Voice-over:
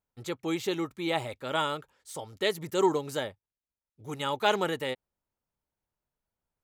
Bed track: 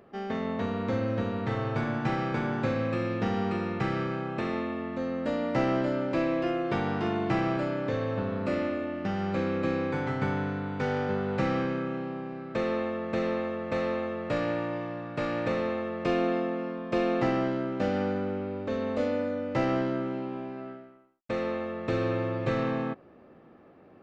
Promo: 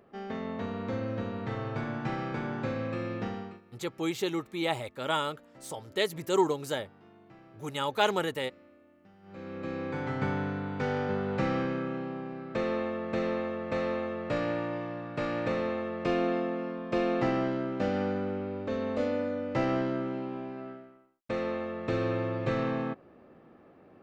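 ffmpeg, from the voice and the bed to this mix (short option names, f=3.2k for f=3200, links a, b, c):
-filter_complex "[0:a]adelay=3550,volume=-0.5dB[a];[1:a]volume=21.5dB,afade=t=out:st=3.18:d=0.43:silence=0.0707946,afade=t=in:st=9.22:d=1.01:silence=0.0501187[b];[a][b]amix=inputs=2:normalize=0"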